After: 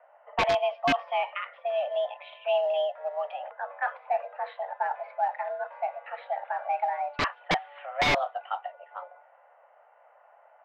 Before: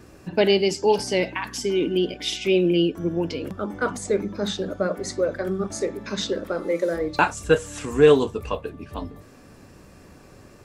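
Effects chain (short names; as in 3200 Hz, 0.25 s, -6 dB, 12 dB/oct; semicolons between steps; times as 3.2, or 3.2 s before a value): mistuned SSB +280 Hz 340–2900 Hz; wrapped overs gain 12 dB; short-mantissa float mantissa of 4-bit; air absorption 230 m; low-pass opened by the level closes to 1300 Hz, open at -19.5 dBFS; gain -3 dB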